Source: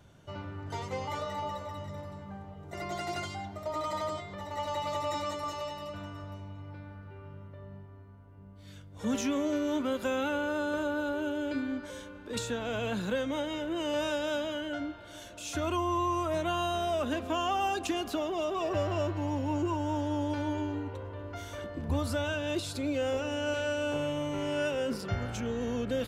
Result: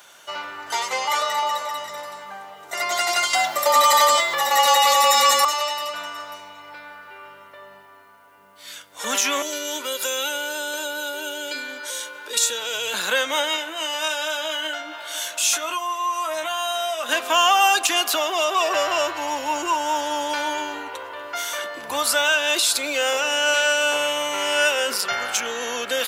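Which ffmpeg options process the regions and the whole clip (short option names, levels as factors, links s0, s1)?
-filter_complex "[0:a]asettb=1/sr,asplit=3[s0][s1][s2];[s0]atrim=end=3.334[s3];[s1]atrim=start=3.33:end=5.45,asetpts=PTS-STARTPTS,afade=t=in:d=0.004:c=qsin,afade=t=out:st=2.116:d=0.004:c=qsin,highshelf=f=12000:g=12,acontrast=89,afreqshift=-41[s4];[s2]atrim=start=5.446[s5];[s3][s4]acrossfade=d=0.004:c1=hsin:c2=qsin[s6];[s6][s5]acrossfade=d=0.004:c1=qsin:c2=hsin,asettb=1/sr,asplit=3[s7][s8][s9];[s7]atrim=end=9.424[s10];[s8]atrim=start=9.42:end=12.94,asetpts=PTS-STARTPTS,afade=t=in:d=0.004:c=qsin,afade=t=out:st=3.516:d=0.004:c=qsin,aecho=1:1:2.1:0.56,atrim=end_sample=155232,acrossover=split=430|3000[s11][s12][s13];[s12]acompressor=threshold=0.00316:ratio=3:attack=3.2:release=140:knee=2.83:detection=peak[s14];[s11][s14][s13]amix=inputs=3:normalize=0[s15];[s9]atrim=start=12.936[s16];[s10][s15]acrossfade=d=0.004:c1=hsin:c2=qsin[s17];[s17][s16]acrossfade=d=0.004:c1=qsin:c2=hsin,asettb=1/sr,asplit=3[s18][s19][s20];[s18]atrim=end=13.564[s21];[s19]atrim=start=13.56:end=17.09,asetpts=PTS-STARTPTS,afade=t=in:d=0.004:c=qsin,afade=t=out:st=3.526:d=0.004:c=qsin,acompressor=threshold=0.0158:ratio=6:attack=3.2:release=140:knee=1:detection=peak,asplit=2[s22][s23];[s23]adelay=16,volume=0.531[s24];[s22][s24]amix=inputs=2:normalize=0,atrim=end_sample=155673[s25];[s20]atrim=start=17.086[s26];[s21][s25]acrossfade=d=0.004:c1=hsin:c2=qsin[s27];[s27][s26]acrossfade=d=0.004:c1=qsin:c2=hsin,highpass=1000,highshelf=f=7400:g=9.5,alimiter=level_in=15:limit=0.891:release=50:level=0:latency=1,volume=0.501"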